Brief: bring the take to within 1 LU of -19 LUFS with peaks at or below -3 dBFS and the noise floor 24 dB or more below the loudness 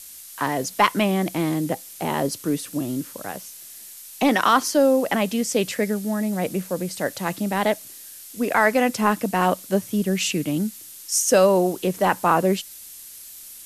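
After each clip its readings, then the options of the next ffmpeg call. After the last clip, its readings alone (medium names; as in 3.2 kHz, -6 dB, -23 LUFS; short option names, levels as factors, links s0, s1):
noise floor -42 dBFS; noise floor target -46 dBFS; loudness -22.0 LUFS; peak level -3.0 dBFS; loudness target -19.0 LUFS
-> -af "afftdn=nr=6:nf=-42"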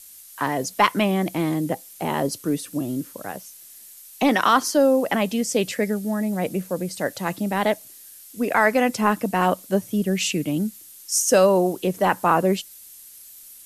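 noise floor -45 dBFS; noise floor target -46 dBFS
-> -af "afftdn=nr=6:nf=-45"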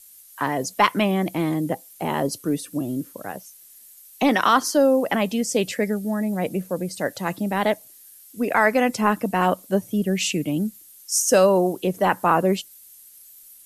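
noise floor -48 dBFS; loudness -22.5 LUFS; peak level -3.0 dBFS; loudness target -19.0 LUFS
-> -af "volume=1.5,alimiter=limit=0.708:level=0:latency=1"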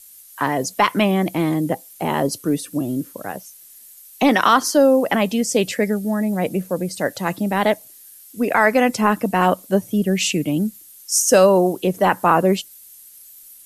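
loudness -19.0 LUFS; peak level -3.0 dBFS; noise floor -45 dBFS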